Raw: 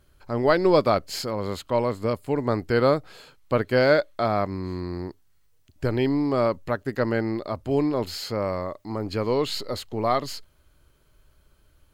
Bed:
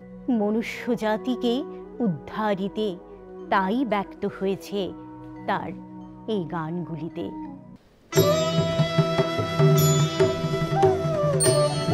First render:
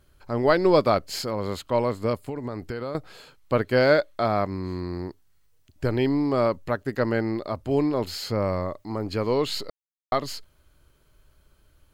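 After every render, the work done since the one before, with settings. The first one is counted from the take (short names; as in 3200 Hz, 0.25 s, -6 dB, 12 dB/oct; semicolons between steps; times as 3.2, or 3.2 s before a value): 2.29–2.95 compressor 12:1, threshold -27 dBFS; 8.24–8.83 low shelf 200 Hz +6.5 dB; 9.7–10.12 mute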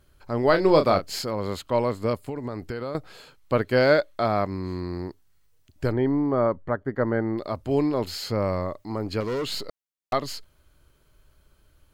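0.5–1.19 doubler 31 ms -8 dB; 5.92–7.38 polynomial smoothing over 41 samples; 9.2–10.13 hard clip -25 dBFS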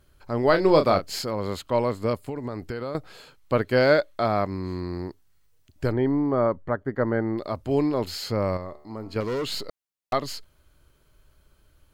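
8.57–9.16 resonator 74 Hz, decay 0.94 s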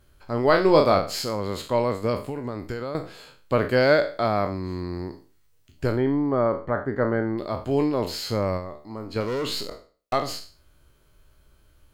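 spectral trails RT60 0.39 s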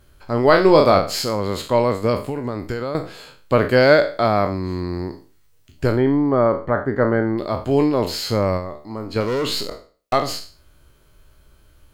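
gain +5.5 dB; limiter -2 dBFS, peak gain reduction 2.5 dB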